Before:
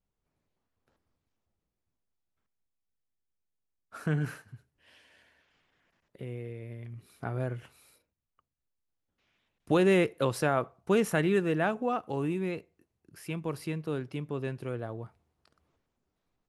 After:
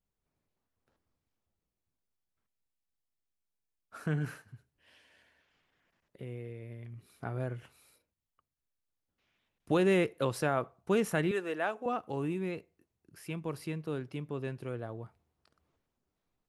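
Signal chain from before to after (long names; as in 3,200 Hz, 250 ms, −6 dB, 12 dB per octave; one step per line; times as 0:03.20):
0:11.31–0:11.86: high-pass filter 430 Hz 12 dB per octave
level −3 dB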